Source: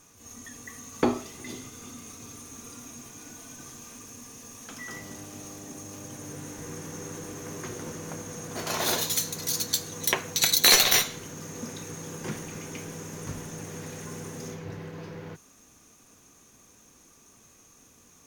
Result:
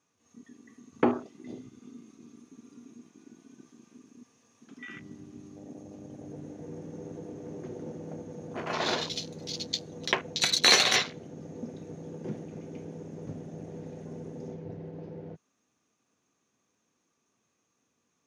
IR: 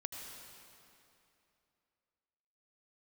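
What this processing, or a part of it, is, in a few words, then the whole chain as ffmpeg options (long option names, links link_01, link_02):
over-cleaned archive recording: -af "highpass=130,lowpass=5200,afwtdn=0.0158"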